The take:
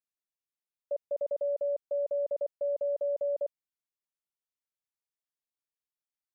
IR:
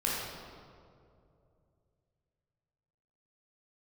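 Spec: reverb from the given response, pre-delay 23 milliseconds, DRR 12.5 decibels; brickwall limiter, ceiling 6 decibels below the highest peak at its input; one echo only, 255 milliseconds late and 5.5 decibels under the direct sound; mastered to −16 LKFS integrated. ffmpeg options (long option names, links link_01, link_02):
-filter_complex "[0:a]alimiter=level_in=8.5dB:limit=-24dB:level=0:latency=1,volume=-8.5dB,aecho=1:1:255:0.531,asplit=2[link_01][link_02];[1:a]atrim=start_sample=2205,adelay=23[link_03];[link_02][link_03]afir=irnorm=-1:irlink=0,volume=-20.5dB[link_04];[link_01][link_04]amix=inputs=2:normalize=0,volume=24dB"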